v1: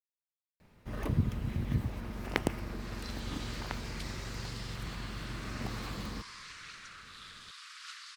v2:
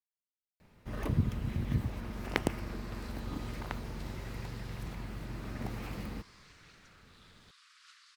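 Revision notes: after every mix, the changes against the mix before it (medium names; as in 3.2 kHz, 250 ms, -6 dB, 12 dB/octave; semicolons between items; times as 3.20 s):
second sound -12.0 dB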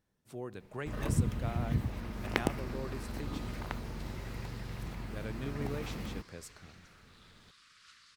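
speech: unmuted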